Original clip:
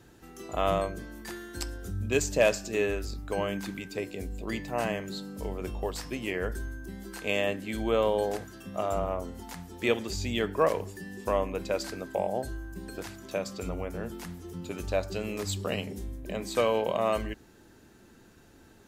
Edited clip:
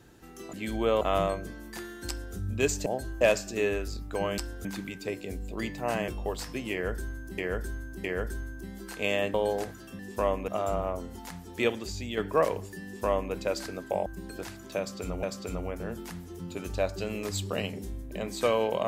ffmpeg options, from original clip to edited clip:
-filter_complex "[0:a]asplit=16[s0][s1][s2][s3][s4][s5][s6][s7][s8][s9][s10][s11][s12][s13][s14][s15];[s0]atrim=end=0.532[s16];[s1]atrim=start=7.588:end=8.072[s17];[s2]atrim=start=0.528:end=2.382[s18];[s3]atrim=start=12.298:end=12.652[s19];[s4]atrim=start=2.378:end=3.552[s20];[s5]atrim=start=1.608:end=1.882[s21];[s6]atrim=start=3.548:end=4.982[s22];[s7]atrim=start=5.648:end=6.952[s23];[s8]atrim=start=6.288:end=6.952[s24];[s9]atrim=start=6.288:end=7.592[s25];[s10]atrim=start=8.068:end=8.722[s26];[s11]atrim=start=11.078:end=11.572[s27];[s12]atrim=start=8.718:end=10.41,asetpts=PTS-STARTPTS,afade=t=out:st=1.112:d=0.58:silence=0.473151[s28];[s13]atrim=start=10.41:end=12.302,asetpts=PTS-STARTPTS,afade=t=in:d=0.004:c=hsin:silence=0.473151[s29];[s14]atrim=start=12.648:end=13.822[s30];[s15]atrim=start=13.368[s31];[s16][s17]acrossfade=d=0.004:c1=hsin:c2=hsin[s32];[s32][s18]acrossfade=d=0.004:c1=hsin:c2=hsin[s33];[s33][s19]acrossfade=d=0.004:c1=hsin:c2=hsin[s34];[s34][s20]acrossfade=d=0.004:c1=hsin:c2=hsin[s35];[s35][s21]acrossfade=d=0.004:c1=hsin:c2=hsin[s36];[s36][s22]acrossfade=d=0.004:c1=hsin:c2=hsin[s37];[s37][s23]acrossfade=d=0.004:c1=hsin:c2=hsin[s38];[s38][s24]acrossfade=d=0.004:c1=hsin:c2=hsin[s39];[s39][s25]acrossfade=d=0.004:c1=hsin:c2=hsin[s40];[s40][s26]acrossfade=d=0.004:c1=hsin:c2=hsin[s41];[s41][s27]acrossfade=d=0.004:c1=hsin:c2=hsin[s42];[s28][s29]concat=n=2:v=0:a=1[s43];[s42][s43]acrossfade=d=0.004:c1=hsin:c2=hsin[s44];[s44][s30]acrossfade=d=0.004:c1=hsin:c2=hsin[s45];[s45][s31]acrossfade=d=0.004:c1=hsin:c2=hsin"

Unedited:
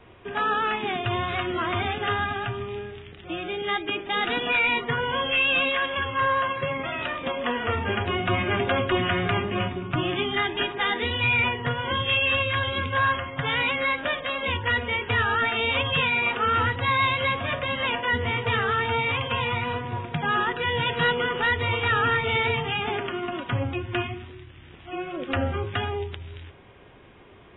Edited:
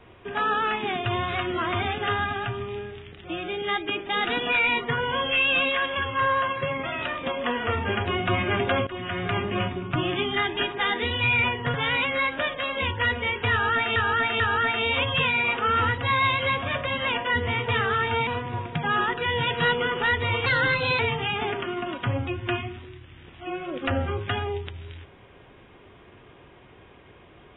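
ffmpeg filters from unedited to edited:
-filter_complex "[0:a]asplit=8[s0][s1][s2][s3][s4][s5][s6][s7];[s0]atrim=end=8.87,asetpts=PTS-STARTPTS,afade=t=out:st=8.866:d=0.004:c=hsin:silence=0.158489[s8];[s1]atrim=start=8.87:end=11.742,asetpts=PTS-STARTPTS,afade=t=in:d=0.61:silence=0.158489[s9];[s2]atrim=start=13.398:end=15.622[s10];[s3]atrim=start=15.178:end=15.622[s11];[s4]atrim=start=15.178:end=19.052[s12];[s5]atrim=start=19.658:end=21.854[s13];[s6]atrim=start=21.85:end=22.45,asetpts=PTS-STARTPTS,asetrate=49833,aresample=44100[s14];[s7]atrim=start=22.446[s15];[s8][s9]concat=n=2:v=0:a=1[s16];[s16][s10]acrossfade=d=0.004:c1=hsin:c2=hsin[s17];[s17][s11]acrossfade=d=0.004:c1=hsin:c2=hsin[s18];[s18][s12]acrossfade=d=0.004:c1=hsin:c2=hsin[s19];[s19][s13]acrossfade=d=0.004:c1=hsin:c2=hsin[s20];[s20][s14]acrossfade=d=0.004:c1=hsin:c2=hsin[s21];[s21][s15]acrossfade=d=0.004:c1=hsin:c2=hsin"

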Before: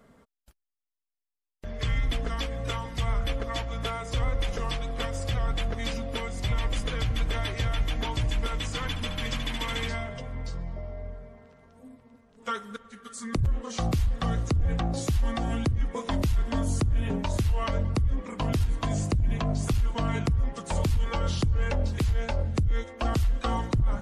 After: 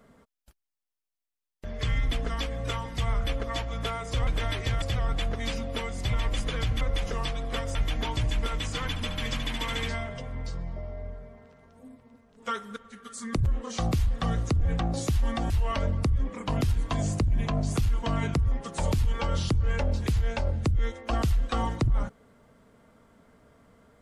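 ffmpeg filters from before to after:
-filter_complex "[0:a]asplit=6[s0][s1][s2][s3][s4][s5];[s0]atrim=end=4.272[s6];[s1]atrim=start=7.198:end=7.752[s7];[s2]atrim=start=5.208:end=7.202[s8];[s3]atrim=start=4.268:end=5.212[s9];[s4]atrim=start=7.748:end=15.502[s10];[s5]atrim=start=17.418[s11];[s6][s7]acrossfade=d=0.004:c1=hsin:c2=hsin[s12];[s12][s8]acrossfade=d=0.004:c1=hsin:c2=hsin[s13];[s13][s9]acrossfade=d=0.004:c1=hsin:c2=hsin[s14];[s14][s10]acrossfade=d=0.004:c1=hsin:c2=hsin[s15];[s15][s11]acrossfade=d=0.004:c1=hsin:c2=hsin"

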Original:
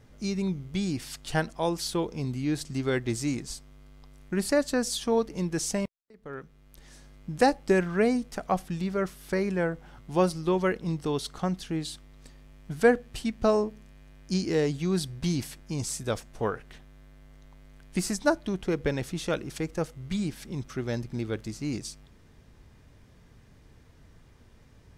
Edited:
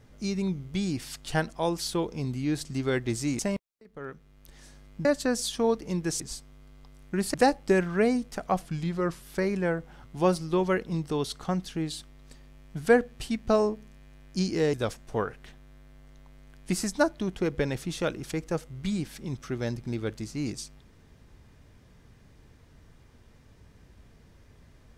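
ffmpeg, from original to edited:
-filter_complex "[0:a]asplit=8[s0][s1][s2][s3][s4][s5][s6][s7];[s0]atrim=end=3.392[s8];[s1]atrim=start=5.678:end=7.342[s9];[s2]atrim=start=4.528:end=5.682[s10];[s3]atrim=start=3.388:end=4.532[s11];[s4]atrim=start=7.338:end=8.614[s12];[s5]atrim=start=8.61:end=9.17,asetpts=PTS-STARTPTS,asetrate=40131,aresample=44100,atrim=end_sample=27138,asetpts=PTS-STARTPTS[s13];[s6]atrim=start=9.166:end=14.682[s14];[s7]atrim=start=15.998[s15];[s8][s9]acrossfade=d=0.004:c1=hsin:c2=hsin[s16];[s16][s10]acrossfade=d=0.004:c1=hsin:c2=hsin[s17];[s17][s11]acrossfade=d=0.004:c1=hsin:c2=hsin[s18];[s18][s12]acrossfade=d=0.004:c1=hsin:c2=hsin[s19];[s19][s13]acrossfade=d=0.004:c1=hsin:c2=hsin[s20];[s20][s14]acrossfade=d=0.004:c1=hsin:c2=hsin[s21];[s21][s15]acrossfade=d=0.004:c1=hsin:c2=hsin"

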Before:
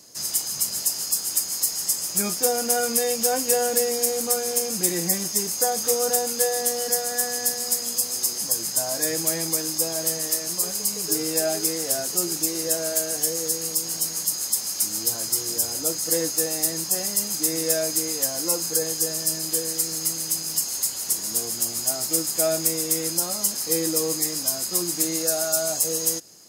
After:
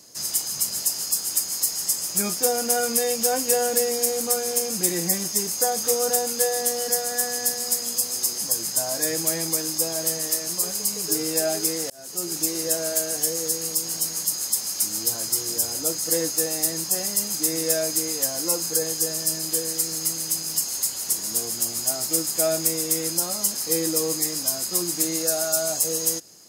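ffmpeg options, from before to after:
-filter_complex "[0:a]asplit=2[s0][s1];[s0]atrim=end=11.9,asetpts=PTS-STARTPTS,afade=t=out:st=11.896:d=0.004:c=hsin[s2];[s1]atrim=start=11.9,asetpts=PTS-STARTPTS,afade=t=in:d=0.52[s3];[s2][s3]concat=n=2:v=0:a=1"

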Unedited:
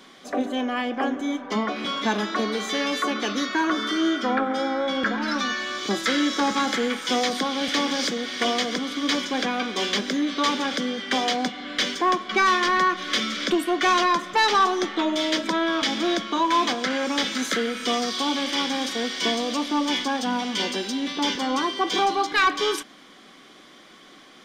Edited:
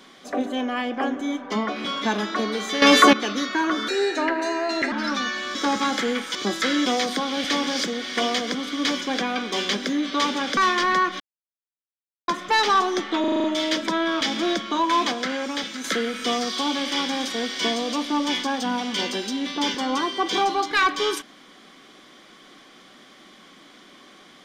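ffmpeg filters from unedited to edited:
-filter_complex "[0:a]asplit=18[s0][s1][s2][s3][s4][s5][s6][s7][s8][s9][s10][s11][s12][s13][s14][s15][s16][s17];[s0]atrim=end=2.822[s18];[s1]atrim=start=2.818:end=3.132,asetpts=PTS-STARTPTS,volume=3.98[s19];[s2]atrim=start=3.128:end=3.884[s20];[s3]atrim=start=3.88:end=5.16,asetpts=PTS-STARTPTS,asetrate=54243,aresample=44100[s21];[s4]atrim=start=5.156:end=5.792[s22];[s5]atrim=start=6.298:end=7.102[s23];[s6]atrim=start=5.788:end=6.302[s24];[s7]atrim=start=7.098:end=10.812[s25];[s8]atrim=start=12.418:end=13.05,asetpts=PTS-STARTPTS,afade=t=out:st=0.628:d=0.004:c=hsin[s26];[s9]atrim=start=13.05:end=14.13,asetpts=PTS-STARTPTS,volume=0[s27];[s10]atrim=start=14.13:end=15.092,asetpts=PTS-STARTPTS,afade=t=in:d=0.004:c=hsin[s28];[s11]atrim=start=15.048:end=15.092[s29];[s12]atrim=start=15.048:end=15.092[s30];[s13]atrim=start=15.048:end=15.092[s31];[s14]atrim=start=15.048:end=15.092[s32];[s15]atrim=start=15.048:end=15.092[s33];[s16]atrim=start=15.048:end=17.45,asetpts=PTS-STARTPTS,afade=t=out:st=1.632:d=0.77:silence=0.421697[s34];[s17]atrim=start=17.45,asetpts=PTS-STARTPTS,afade=t=in:d=0.004:c=hsin:silence=0.421697[s35];[s18][s19]acrossfade=d=0.004:c1=hsin:c2=hsin[s36];[s36][s20]acrossfade=d=0.004:c1=hsin:c2=hsin[s37];[s37][s21]acrossfade=d=0.004:c1=hsin:c2=hsin[s38];[s38][s22]acrossfade=d=0.004:c1=hsin:c2=hsin[s39];[s39][s23]acrossfade=d=0.004:c1=hsin:c2=hsin[s40];[s40][s24]acrossfade=d=0.004:c1=hsin:c2=hsin[s41];[s41][s25]acrossfade=d=0.004:c1=hsin:c2=hsin[s42];[s26][s27][s28]concat=n=3:v=0:a=1[s43];[s42][s43]acrossfade=d=0.004:c1=hsin:c2=hsin[s44];[s44][s29]acrossfade=d=0.004:c1=hsin:c2=hsin[s45];[s45][s30]acrossfade=d=0.004:c1=hsin:c2=hsin[s46];[s46][s31]acrossfade=d=0.004:c1=hsin:c2=hsin[s47];[s47][s32]acrossfade=d=0.004:c1=hsin:c2=hsin[s48];[s48][s33]acrossfade=d=0.004:c1=hsin:c2=hsin[s49];[s34][s35]concat=n=2:v=0:a=1[s50];[s49][s50]acrossfade=d=0.004:c1=hsin:c2=hsin"

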